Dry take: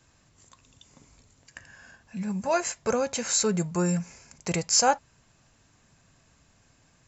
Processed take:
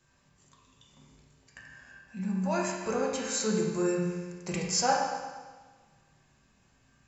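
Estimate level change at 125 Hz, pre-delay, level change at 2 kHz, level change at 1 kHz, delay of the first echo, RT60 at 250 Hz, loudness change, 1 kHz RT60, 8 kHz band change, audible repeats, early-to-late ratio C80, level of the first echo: −4.0 dB, 5 ms, −2.5 dB, −2.5 dB, no echo audible, 1.4 s, −4.0 dB, 1.4 s, can't be measured, no echo audible, 3.0 dB, no echo audible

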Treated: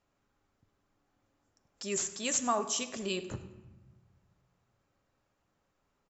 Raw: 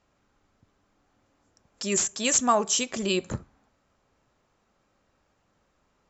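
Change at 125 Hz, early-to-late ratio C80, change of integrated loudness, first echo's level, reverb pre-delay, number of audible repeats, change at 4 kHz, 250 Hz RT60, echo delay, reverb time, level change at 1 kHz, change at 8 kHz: −7.5 dB, 13.5 dB, −8.5 dB, −18.0 dB, 7 ms, 1, −8.0 dB, 1.9 s, 101 ms, 1.1 s, −8.0 dB, can't be measured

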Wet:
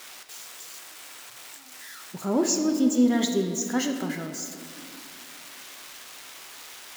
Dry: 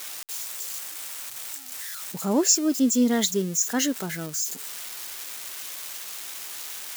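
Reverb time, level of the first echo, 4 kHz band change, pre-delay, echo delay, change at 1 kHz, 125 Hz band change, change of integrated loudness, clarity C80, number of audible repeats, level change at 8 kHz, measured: 2.4 s, no echo audible, −4.5 dB, 3 ms, no echo audible, −0.5 dB, −1.5 dB, +1.0 dB, 7.5 dB, no echo audible, −7.0 dB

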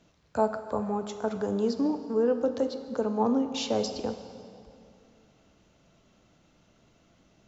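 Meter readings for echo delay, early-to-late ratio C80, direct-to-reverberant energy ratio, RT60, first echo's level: no echo audible, 10.0 dB, 8.0 dB, 2.5 s, no echo audible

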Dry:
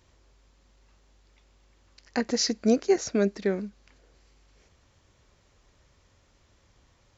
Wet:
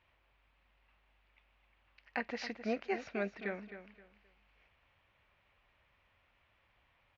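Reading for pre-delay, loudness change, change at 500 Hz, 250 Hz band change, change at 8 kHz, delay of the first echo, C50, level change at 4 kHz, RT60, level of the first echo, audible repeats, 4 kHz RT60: no reverb audible, −13.0 dB, −13.5 dB, −15.0 dB, can't be measured, 262 ms, no reverb audible, −18.0 dB, no reverb audible, −11.0 dB, 3, no reverb audible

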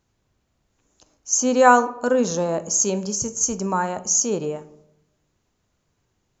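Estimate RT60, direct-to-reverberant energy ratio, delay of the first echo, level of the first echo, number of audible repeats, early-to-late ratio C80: 0.80 s, 11.0 dB, no echo audible, no echo audible, no echo audible, 18.0 dB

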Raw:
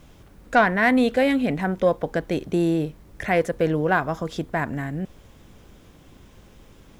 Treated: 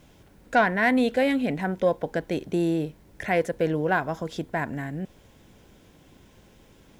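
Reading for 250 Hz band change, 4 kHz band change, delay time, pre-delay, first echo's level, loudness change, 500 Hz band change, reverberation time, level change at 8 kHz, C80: −3.0 dB, −2.5 dB, no echo audible, no reverb audible, no echo audible, −3.0 dB, −2.5 dB, no reverb audible, −2.5 dB, no reverb audible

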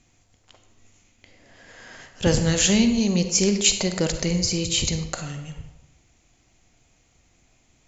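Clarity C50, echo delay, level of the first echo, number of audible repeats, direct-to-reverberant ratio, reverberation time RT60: 8.0 dB, no echo audible, no echo audible, no echo audible, 7.5 dB, 0.90 s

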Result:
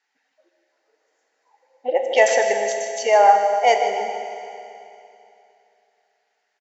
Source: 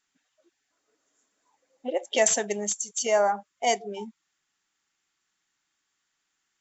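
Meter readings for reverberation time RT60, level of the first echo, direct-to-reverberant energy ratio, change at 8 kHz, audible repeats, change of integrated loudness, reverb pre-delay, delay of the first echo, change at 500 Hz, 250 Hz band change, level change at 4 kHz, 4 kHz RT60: 2.8 s, −11.0 dB, 3.5 dB, can't be measured, 1, +7.5 dB, 15 ms, 154 ms, +9.0 dB, −4.5 dB, +3.5 dB, 2.8 s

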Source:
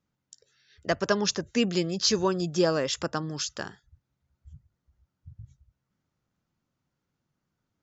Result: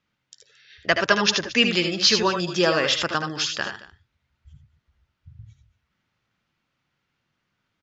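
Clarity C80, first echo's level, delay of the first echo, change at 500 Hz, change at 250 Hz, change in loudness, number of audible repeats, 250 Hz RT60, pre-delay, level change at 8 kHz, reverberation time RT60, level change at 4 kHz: no reverb audible, −8.5 dB, 73 ms, +3.0 dB, +2.0 dB, +6.0 dB, 2, no reverb audible, no reverb audible, can't be measured, no reverb audible, +9.5 dB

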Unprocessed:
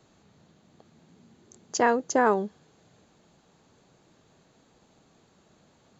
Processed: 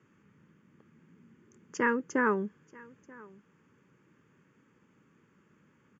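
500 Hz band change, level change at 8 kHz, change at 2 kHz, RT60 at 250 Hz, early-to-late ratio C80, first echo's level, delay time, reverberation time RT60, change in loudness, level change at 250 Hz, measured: −7.0 dB, can't be measured, 0.0 dB, no reverb audible, no reverb audible, −23.5 dB, 934 ms, no reverb audible, −5.0 dB, −2.0 dB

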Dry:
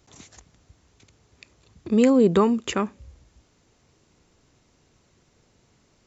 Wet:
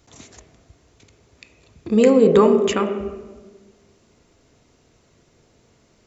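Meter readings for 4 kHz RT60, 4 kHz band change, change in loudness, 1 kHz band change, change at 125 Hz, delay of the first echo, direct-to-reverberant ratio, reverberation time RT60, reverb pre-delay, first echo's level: 0.90 s, +3.5 dB, +4.5 dB, +4.0 dB, +2.0 dB, no echo audible, 4.0 dB, 1.3 s, 4 ms, no echo audible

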